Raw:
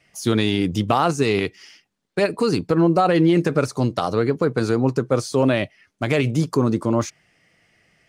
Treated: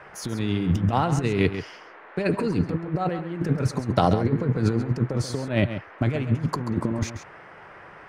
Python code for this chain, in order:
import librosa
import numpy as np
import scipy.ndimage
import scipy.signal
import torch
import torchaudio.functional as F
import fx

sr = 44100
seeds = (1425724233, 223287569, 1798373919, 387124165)

p1 = fx.bass_treble(x, sr, bass_db=8, treble_db=-9)
p2 = fx.notch(p1, sr, hz=1200.0, q=8.4)
p3 = fx.over_compress(p2, sr, threshold_db=-20.0, ratio=-0.5)
p4 = fx.dmg_noise_band(p3, sr, seeds[0], low_hz=340.0, high_hz=1900.0, level_db=-44.0)
p5 = p4 + fx.echo_single(p4, sr, ms=135, db=-10.5, dry=0)
y = p5 * librosa.db_to_amplitude(-2.5)